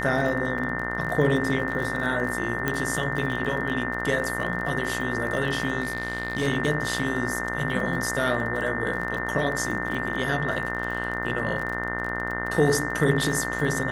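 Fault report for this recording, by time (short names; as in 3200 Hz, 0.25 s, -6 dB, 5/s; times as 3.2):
buzz 60 Hz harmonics 34 -32 dBFS
crackle 35/s -31 dBFS
tone 1800 Hz -31 dBFS
0.58 gap 2.5 ms
2.68 pop -11 dBFS
5.82–6.48 clipped -20.5 dBFS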